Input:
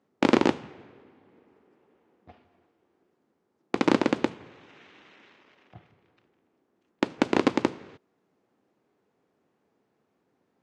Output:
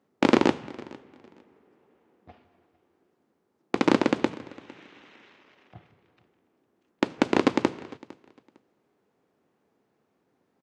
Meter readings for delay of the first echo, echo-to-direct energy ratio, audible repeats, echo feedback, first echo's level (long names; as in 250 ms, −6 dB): 455 ms, −22.0 dB, 1, repeats not evenly spaced, −22.0 dB